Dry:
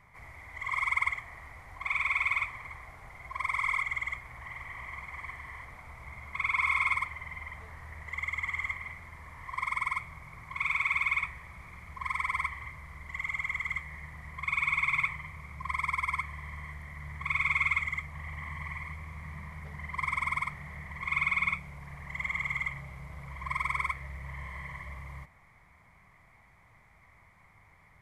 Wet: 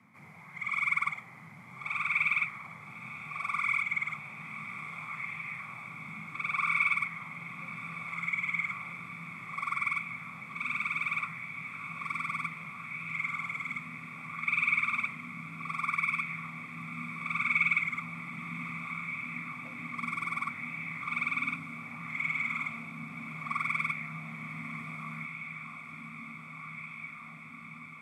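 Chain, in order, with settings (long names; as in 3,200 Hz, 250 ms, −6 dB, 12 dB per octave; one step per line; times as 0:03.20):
frequency shifter +91 Hz
feedback delay with all-pass diffusion 1,232 ms, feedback 80%, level −9.5 dB
auto-filter bell 0.65 Hz 220–2,600 Hz +6 dB
level −4 dB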